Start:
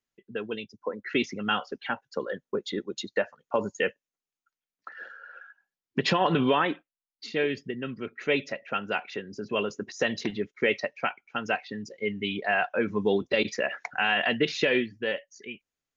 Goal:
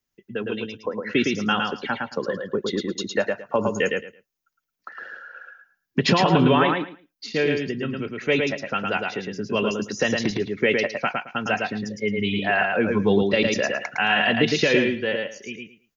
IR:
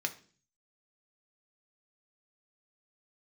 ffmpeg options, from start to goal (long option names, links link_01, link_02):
-filter_complex "[0:a]acrossover=split=220|1500[link_01][link_02][link_03];[link_01]acontrast=38[link_04];[link_03]aexciter=amount=1.6:drive=1.1:freq=5000[link_05];[link_04][link_02][link_05]amix=inputs=3:normalize=0,aecho=1:1:110|220|330:0.668|0.127|0.0241,volume=3.5dB"